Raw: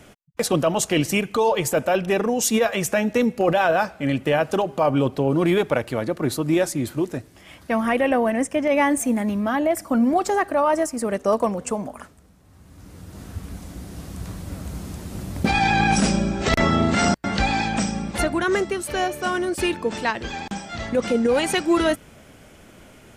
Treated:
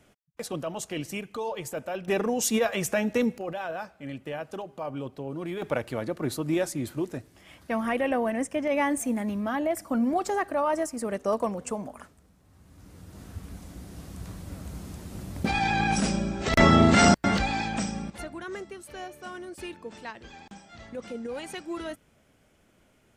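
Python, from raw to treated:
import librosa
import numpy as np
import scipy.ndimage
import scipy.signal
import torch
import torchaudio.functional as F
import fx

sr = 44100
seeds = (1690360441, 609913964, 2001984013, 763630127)

y = fx.gain(x, sr, db=fx.steps((0.0, -13.0), (2.08, -5.0), (3.38, -15.0), (5.62, -6.5), (16.57, 1.5), (17.38, -6.5), (18.1, -16.0)))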